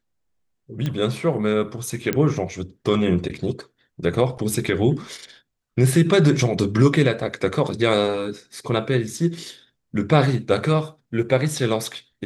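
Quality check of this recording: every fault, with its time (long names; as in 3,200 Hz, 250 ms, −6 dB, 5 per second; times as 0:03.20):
0:00.86: click −14 dBFS
0:02.13: click −8 dBFS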